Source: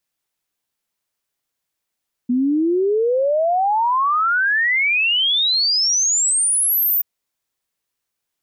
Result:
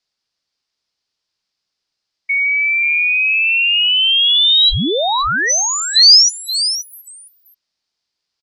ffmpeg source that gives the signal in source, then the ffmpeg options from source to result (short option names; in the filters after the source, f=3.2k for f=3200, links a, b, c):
-f lavfi -i "aevalsrc='0.188*clip(min(t,4.73-t)/0.01,0,1)*sin(2*PI*240*4.73/log(15000/240)*(exp(log(15000/240)*t/4.73)-1))':d=4.73:s=44100"
-filter_complex "[0:a]afftfilt=real='real(if(lt(b,920),b+92*(1-2*mod(floor(b/92),2)),b),0)':imag='imag(if(lt(b,920),b+92*(1-2*mod(floor(b/92),2)),b),0)':win_size=2048:overlap=0.75,lowpass=f=4.9k:t=q:w=4.2,asplit=2[a][b];[b]aecho=0:1:527:0.282[c];[a][c]amix=inputs=2:normalize=0"